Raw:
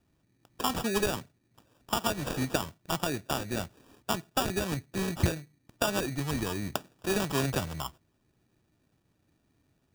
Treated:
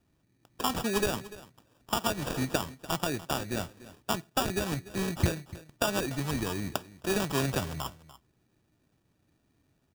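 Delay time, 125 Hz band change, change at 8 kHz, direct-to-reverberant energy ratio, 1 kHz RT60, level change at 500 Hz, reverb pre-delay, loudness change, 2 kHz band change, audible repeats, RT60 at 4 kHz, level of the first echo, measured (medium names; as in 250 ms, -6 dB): 293 ms, 0.0 dB, 0.0 dB, no reverb, no reverb, 0.0 dB, no reverb, 0.0 dB, 0.0 dB, 1, no reverb, -17.5 dB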